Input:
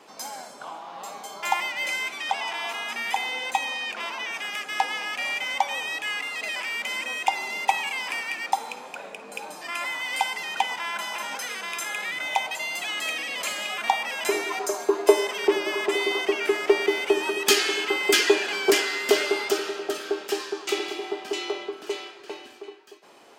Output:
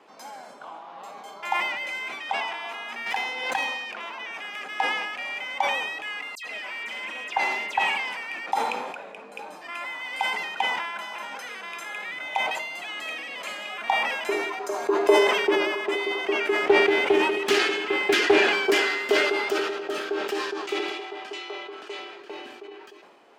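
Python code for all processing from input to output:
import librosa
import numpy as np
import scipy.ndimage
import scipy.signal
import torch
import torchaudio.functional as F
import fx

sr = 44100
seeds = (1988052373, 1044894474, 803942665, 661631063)

y = fx.chain(x, sr, fx.self_delay(depth_ms=0.18),
    fx.pre_swell(db_per_s=38.0), at=(3.06, 4.13))
y = fx.chain(y, sr, fx.dispersion(late='lows', ms=94.0, hz=2800.0),
    fx.doppler_dist(depth_ms=0.13), at=(6.35, 8.17))
y = fx.chain(y, sr, fx.low_shelf(hz=440.0, db=5.0),
    fx.doppler_dist(depth_ms=0.29), at=(16.63, 18.52))
y = fx.chain(y, sr, fx.lowpass(hz=10000.0, slope=12),
    fx.low_shelf(hz=430.0, db=-11.5), at=(20.9, 21.99))
y = scipy.signal.sosfilt(scipy.signal.butter(2, 130.0, 'highpass', fs=sr, output='sos'), y)
y = fx.bass_treble(y, sr, bass_db=-1, treble_db=-11)
y = fx.sustainer(y, sr, db_per_s=37.0)
y = F.gain(torch.from_numpy(y), -3.0).numpy()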